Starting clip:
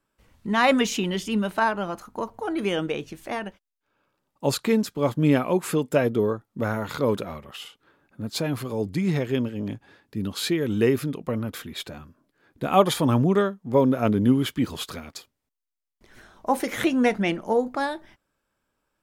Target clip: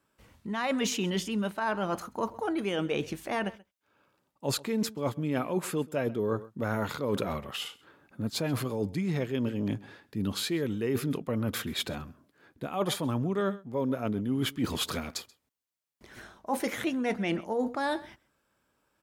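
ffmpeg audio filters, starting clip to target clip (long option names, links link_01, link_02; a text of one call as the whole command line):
ffmpeg -i in.wav -af "aecho=1:1:132:0.0708,areverse,acompressor=threshold=-29dB:ratio=16,areverse,highpass=55,volume=3dB" out.wav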